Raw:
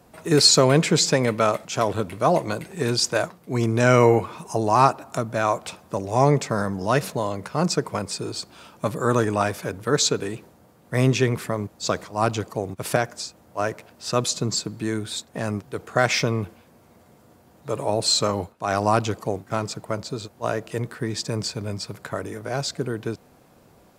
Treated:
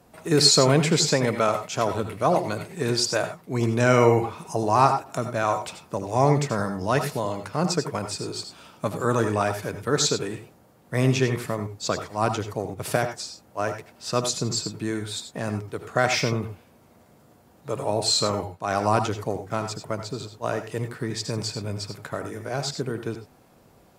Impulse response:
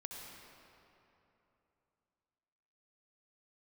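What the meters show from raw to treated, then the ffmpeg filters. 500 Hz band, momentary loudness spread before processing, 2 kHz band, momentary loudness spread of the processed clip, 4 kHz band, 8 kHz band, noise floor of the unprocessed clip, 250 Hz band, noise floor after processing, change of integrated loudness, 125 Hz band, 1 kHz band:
-1.5 dB, 13 LU, -1.5 dB, 13 LU, -1.5 dB, -1.5 dB, -55 dBFS, -1.5 dB, -56 dBFS, -1.5 dB, -1.5 dB, -1.0 dB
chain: -filter_complex "[1:a]atrim=start_sample=2205,afade=t=out:st=0.13:d=0.01,atrim=end_sample=6174,asetrate=35280,aresample=44100[a];[0:a][a]afir=irnorm=-1:irlink=0,volume=2.5dB"

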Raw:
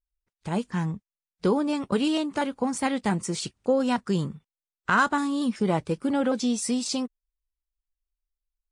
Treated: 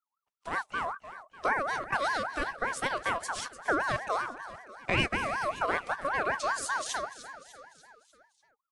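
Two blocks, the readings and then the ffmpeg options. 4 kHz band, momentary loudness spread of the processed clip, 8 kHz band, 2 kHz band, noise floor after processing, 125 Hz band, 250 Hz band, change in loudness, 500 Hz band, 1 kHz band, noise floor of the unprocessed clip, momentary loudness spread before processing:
-3.5 dB, 14 LU, -5.5 dB, +2.0 dB, under -85 dBFS, -10.5 dB, -17.0 dB, -5.0 dB, -6.5 dB, -0.5 dB, under -85 dBFS, 7 LU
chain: -filter_complex "[0:a]asplit=6[a][b][c][d][e][f];[b]adelay=297,afreqshift=30,volume=-13.5dB[g];[c]adelay=594,afreqshift=60,volume=-18.9dB[h];[d]adelay=891,afreqshift=90,volume=-24.2dB[i];[e]adelay=1188,afreqshift=120,volume=-29.6dB[j];[f]adelay=1485,afreqshift=150,volume=-34.9dB[k];[a][g][h][i][j][k]amix=inputs=6:normalize=0,aeval=exprs='val(0)*sin(2*PI*1100*n/s+1100*0.25/5.2*sin(2*PI*5.2*n/s))':c=same,volume=-3dB"

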